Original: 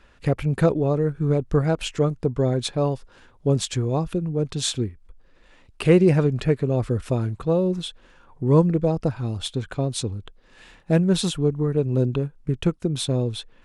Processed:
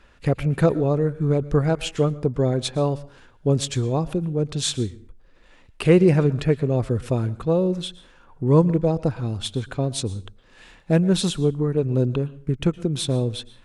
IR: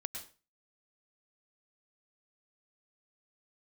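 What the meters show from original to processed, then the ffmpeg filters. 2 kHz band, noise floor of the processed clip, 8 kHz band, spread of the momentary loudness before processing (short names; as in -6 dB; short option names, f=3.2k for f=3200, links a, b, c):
+0.5 dB, -53 dBFS, +0.5 dB, 10 LU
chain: -filter_complex "[0:a]asplit=2[a][b];[1:a]atrim=start_sample=2205,asetrate=40131,aresample=44100[c];[b][c]afir=irnorm=-1:irlink=0,volume=-12dB[d];[a][d]amix=inputs=2:normalize=0,volume=-1dB"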